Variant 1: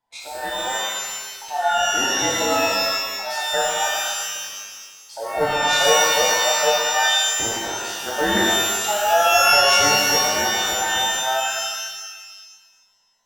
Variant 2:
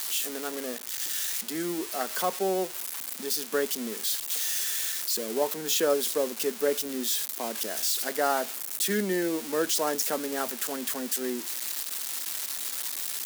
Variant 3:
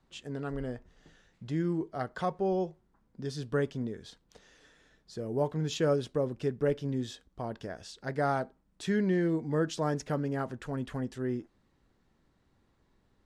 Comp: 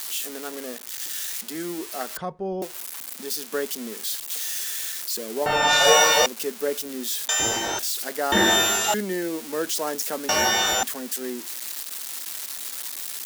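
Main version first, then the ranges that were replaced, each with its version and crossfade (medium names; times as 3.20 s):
2
2.17–2.62 s: from 3
5.46–6.26 s: from 1
7.29–7.79 s: from 1
8.32–8.94 s: from 1
10.29–10.83 s: from 1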